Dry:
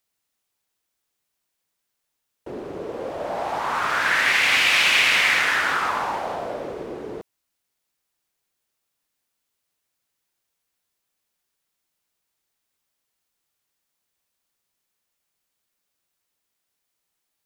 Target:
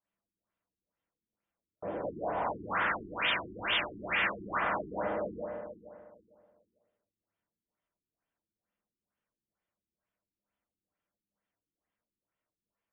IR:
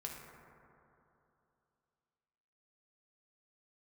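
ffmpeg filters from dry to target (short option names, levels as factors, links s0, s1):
-filter_complex "[0:a]highshelf=f=2200:g=-9.5[s0];[1:a]atrim=start_sample=2205[s1];[s0][s1]afir=irnorm=-1:irlink=0,asoftclip=type=tanh:threshold=0.0841,asetrate=59535,aresample=44100,afftfilt=real='re*lt(b*sr/1024,400*pow(3700/400,0.5+0.5*sin(2*PI*2.2*pts/sr)))':imag='im*lt(b*sr/1024,400*pow(3700/400,0.5+0.5*sin(2*PI*2.2*pts/sr)))':win_size=1024:overlap=0.75"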